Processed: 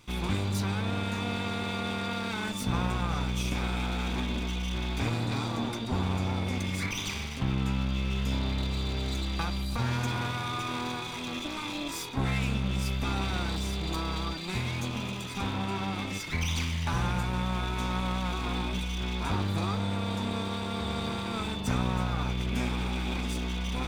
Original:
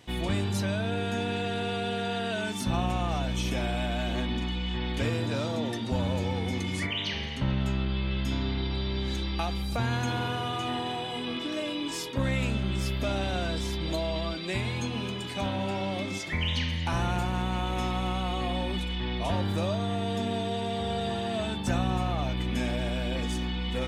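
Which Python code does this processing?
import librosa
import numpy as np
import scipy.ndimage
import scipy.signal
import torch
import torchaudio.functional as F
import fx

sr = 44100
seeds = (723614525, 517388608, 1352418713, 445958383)

y = fx.lower_of_two(x, sr, delay_ms=0.83)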